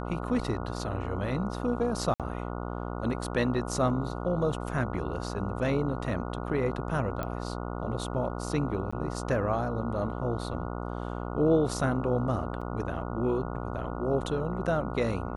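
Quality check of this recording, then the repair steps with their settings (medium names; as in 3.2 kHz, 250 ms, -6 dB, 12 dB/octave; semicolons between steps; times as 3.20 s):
buzz 60 Hz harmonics 24 -35 dBFS
2.14–2.20 s: dropout 57 ms
7.23 s: pop -19 dBFS
8.91–8.93 s: dropout 15 ms
12.61–12.62 s: dropout 5.4 ms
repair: de-click; de-hum 60 Hz, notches 24; interpolate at 2.14 s, 57 ms; interpolate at 8.91 s, 15 ms; interpolate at 12.61 s, 5.4 ms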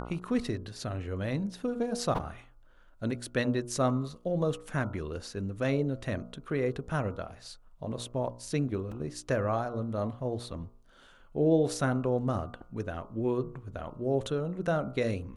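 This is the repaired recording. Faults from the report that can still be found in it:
nothing left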